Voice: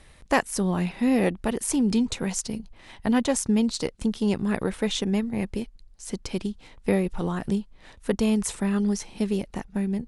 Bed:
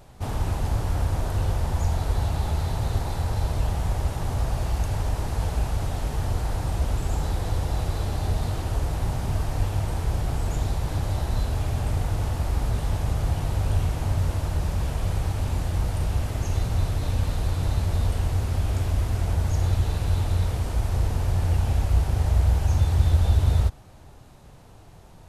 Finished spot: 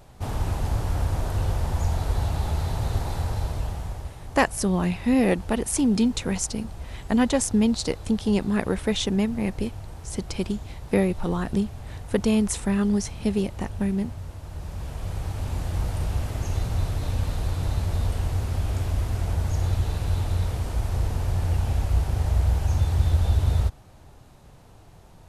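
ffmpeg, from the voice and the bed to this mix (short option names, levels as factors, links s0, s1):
-filter_complex "[0:a]adelay=4050,volume=1.19[s0];[1:a]volume=3.35,afade=t=out:st=3.18:d=0.98:silence=0.251189,afade=t=in:st=14.41:d=1.39:silence=0.281838[s1];[s0][s1]amix=inputs=2:normalize=0"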